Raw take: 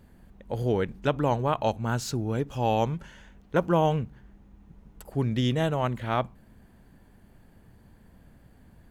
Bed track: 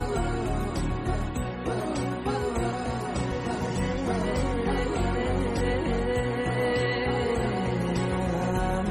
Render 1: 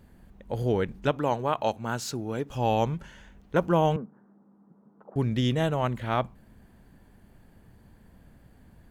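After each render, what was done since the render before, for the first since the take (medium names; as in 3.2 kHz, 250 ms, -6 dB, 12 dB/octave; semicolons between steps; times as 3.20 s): 1.11–2.50 s: high-pass 240 Hz 6 dB/octave; 3.96–5.16 s: Chebyshev band-pass 190–1300 Hz, order 3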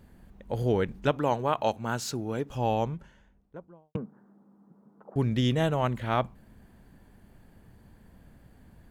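2.19–3.95 s: studio fade out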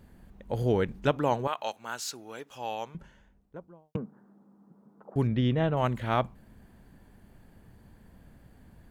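1.47–2.95 s: high-pass 1.4 kHz 6 dB/octave; 5.27–5.77 s: distance through air 290 m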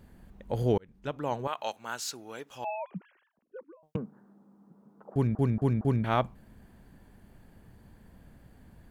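0.78–1.73 s: fade in; 2.64–3.83 s: formants replaced by sine waves; 5.12 s: stutter in place 0.23 s, 4 plays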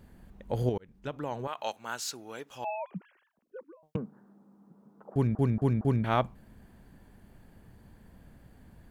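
0.69–1.62 s: compression 2.5:1, threshold -30 dBFS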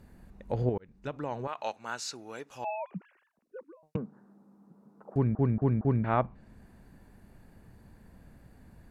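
band-stop 3.2 kHz, Q 7.5; low-pass that closes with the level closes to 2 kHz, closed at -24.5 dBFS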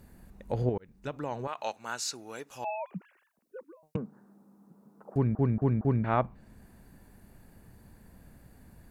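treble shelf 7.8 kHz +11.5 dB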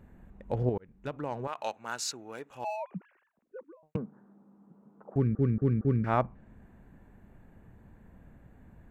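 local Wiener filter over 9 samples; 5.20–6.07 s: time-frequency box 540–1100 Hz -15 dB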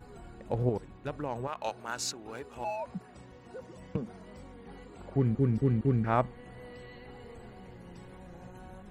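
add bed track -22.5 dB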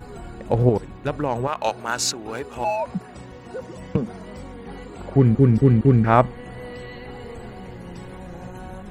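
trim +11.5 dB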